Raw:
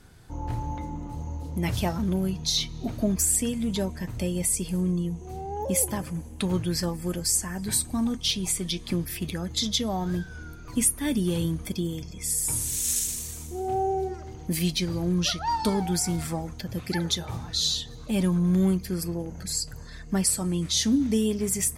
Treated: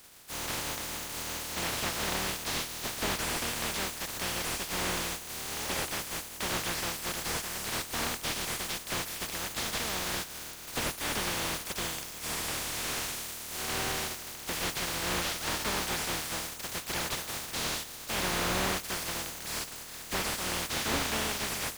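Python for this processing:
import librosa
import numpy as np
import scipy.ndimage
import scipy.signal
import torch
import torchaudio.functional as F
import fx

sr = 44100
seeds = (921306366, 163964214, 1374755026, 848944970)

y = fx.spec_flatten(x, sr, power=0.13)
y = fx.slew_limit(y, sr, full_power_hz=170.0)
y = F.gain(torch.from_numpy(y), -2.0).numpy()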